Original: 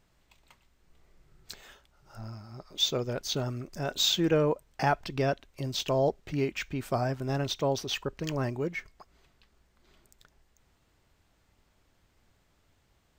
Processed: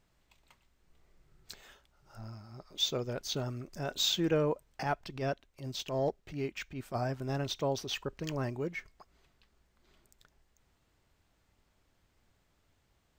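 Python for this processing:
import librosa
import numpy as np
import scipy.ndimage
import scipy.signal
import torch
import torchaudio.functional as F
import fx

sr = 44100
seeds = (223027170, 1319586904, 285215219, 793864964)

y = fx.transient(x, sr, attack_db=-9, sustain_db=-5, at=(4.82, 6.94), fade=0.02)
y = y * 10.0 ** (-4.0 / 20.0)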